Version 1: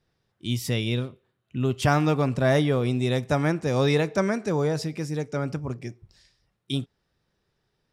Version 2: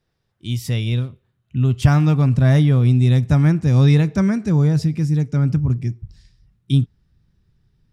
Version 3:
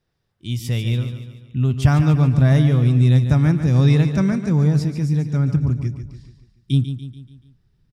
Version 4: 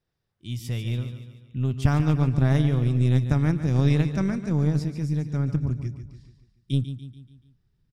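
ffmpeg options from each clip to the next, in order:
-af "asubboost=boost=10.5:cutoff=170"
-af "aecho=1:1:144|288|432|576|720:0.316|0.155|0.0759|0.0372|0.0182,volume=-1.5dB"
-af "aeval=exprs='0.75*(cos(1*acos(clip(val(0)/0.75,-1,1)))-cos(1*PI/2))+0.237*(cos(2*acos(clip(val(0)/0.75,-1,1)))-cos(2*PI/2))':c=same,volume=-7dB"

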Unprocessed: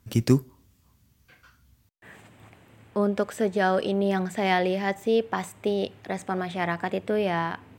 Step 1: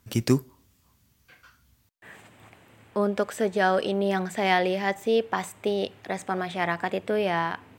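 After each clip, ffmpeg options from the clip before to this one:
-af "lowshelf=f=320:g=-6,volume=2dB"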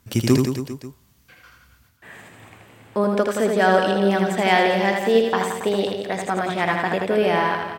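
-af "aecho=1:1:80|172|277.8|399.5|539.4:0.631|0.398|0.251|0.158|0.1,volume=4dB"

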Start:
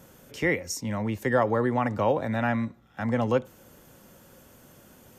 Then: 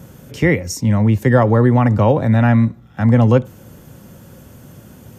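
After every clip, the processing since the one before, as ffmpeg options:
-af "equalizer=f=110:t=o:w=2.4:g=12.5,volume=6.5dB"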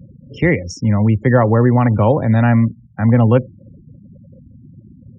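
-af "afftfilt=real='re*gte(hypot(re,im),0.0316)':imag='im*gte(hypot(re,im),0.0316)':win_size=1024:overlap=0.75,lowpass=f=5.5k:w=0.5412,lowpass=f=5.5k:w=1.3066"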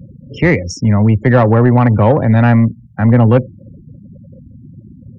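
-af "acontrast=45,volume=-1dB"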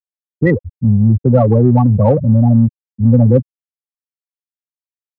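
-filter_complex "[0:a]afftfilt=real='re*gte(hypot(re,im),1)':imag='im*gte(hypot(re,im),1)':win_size=1024:overlap=0.75,asplit=2[a][b];[b]asoftclip=type=tanh:threshold=-14.5dB,volume=-11dB[c];[a][c]amix=inputs=2:normalize=0,volume=-1dB"

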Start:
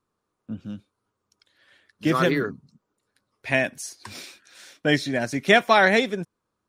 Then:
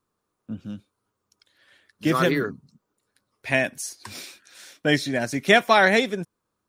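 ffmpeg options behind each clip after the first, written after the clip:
-af "highshelf=f=9k:g=7"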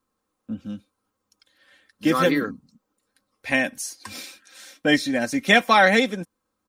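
-af "aecho=1:1:3.8:0.59"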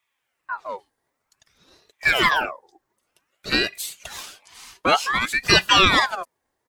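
-filter_complex "[0:a]asplit=2[a][b];[b]asoftclip=type=tanh:threshold=-16.5dB,volume=-12dB[c];[a][c]amix=inputs=2:normalize=0,aeval=exprs='val(0)*sin(2*PI*1400*n/s+1400*0.6/0.54*sin(2*PI*0.54*n/s))':c=same,volume=2dB"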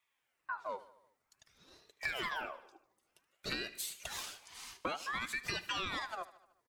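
-af "alimiter=limit=-8.5dB:level=0:latency=1:release=284,acompressor=threshold=-30dB:ratio=5,aecho=1:1:75|150|225|300|375:0.133|0.0787|0.0464|0.0274|0.0162,volume=-6dB"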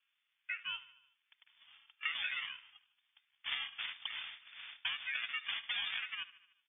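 -af "acrusher=samples=14:mix=1:aa=0.000001,lowpass=f=3.1k:t=q:w=0.5098,lowpass=f=3.1k:t=q:w=0.6013,lowpass=f=3.1k:t=q:w=0.9,lowpass=f=3.1k:t=q:w=2.563,afreqshift=-3600"

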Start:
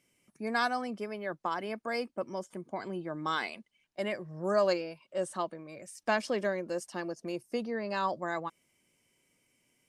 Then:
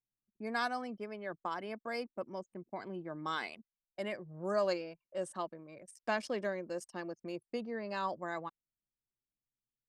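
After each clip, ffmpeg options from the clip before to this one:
-af "anlmdn=0.0158,volume=-5dB"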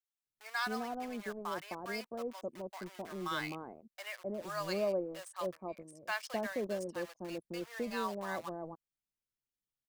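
-filter_complex "[0:a]asplit=2[a][b];[b]acrusher=bits=6:mix=0:aa=0.000001,volume=-4.5dB[c];[a][c]amix=inputs=2:normalize=0,acrossover=split=810[d][e];[d]adelay=260[f];[f][e]amix=inputs=2:normalize=0,volume=-3dB"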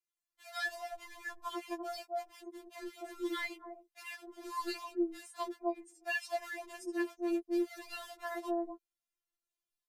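-af "aresample=32000,aresample=44100,afftfilt=real='re*4*eq(mod(b,16),0)':imag='im*4*eq(mod(b,16),0)':win_size=2048:overlap=0.75,volume=2dB"

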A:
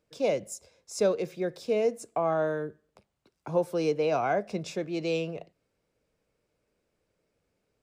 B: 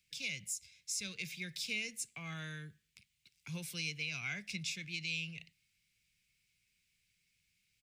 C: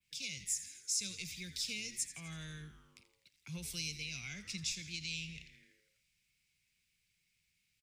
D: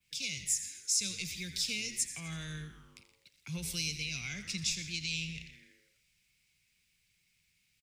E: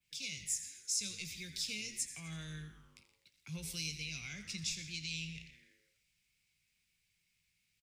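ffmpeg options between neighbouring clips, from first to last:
-filter_complex "[0:a]firequalizer=gain_entry='entry(160,0);entry(300,-17);entry(620,-28);entry(2200,14);entry(4800,12)':delay=0.05:min_phase=1,acrossover=split=150[a][b];[b]alimiter=limit=-23dB:level=0:latency=1:release=327[c];[a][c]amix=inputs=2:normalize=0,volume=-5dB"
-filter_complex "[0:a]asplit=8[a][b][c][d][e][f][g][h];[b]adelay=83,afreqshift=-100,volume=-13.5dB[i];[c]adelay=166,afreqshift=-200,volume=-17.8dB[j];[d]adelay=249,afreqshift=-300,volume=-22.1dB[k];[e]adelay=332,afreqshift=-400,volume=-26.4dB[l];[f]adelay=415,afreqshift=-500,volume=-30.7dB[m];[g]adelay=498,afreqshift=-600,volume=-35dB[n];[h]adelay=581,afreqshift=-700,volume=-39.3dB[o];[a][i][j][k][l][m][n][o]amix=inputs=8:normalize=0,adynamicequalizer=threshold=0.002:dfrequency=6500:dqfactor=0.72:tfrequency=6500:tqfactor=0.72:attack=5:release=100:ratio=0.375:range=3:mode=boostabove:tftype=bell,acrossover=split=440|3000[p][q][r];[q]acompressor=threshold=-57dB:ratio=2[s];[p][s][r]amix=inputs=3:normalize=0,volume=-1.5dB"
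-filter_complex "[0:a]asplit=2[a][b];[b]adelay=122.4,volume=-14dB,highshelf=f=4k:g=-2.76[c];[a][c]amix=inputs=2:normalize=0,volume=5dB"
-filter_complex "[0:a]asplit=2[a][b];[b]adelay=19,volume=-11dB[c];[a][c]amix=inputs=2:normalize=0,volume=-5.5dB"

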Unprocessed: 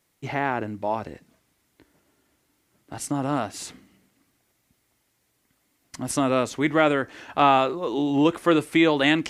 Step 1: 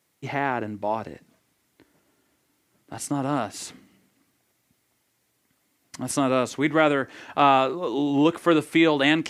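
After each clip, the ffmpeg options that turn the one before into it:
-af "highpass=87"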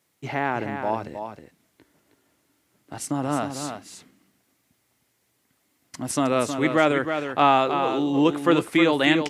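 -af "aecho=1:1:315:0.422"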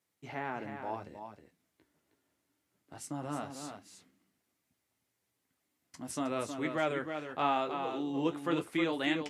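-af "flanger=delay=9.9:depth=3.3:regen=-43:speed=0.77:shape=triangular,volume=-8.5dB"

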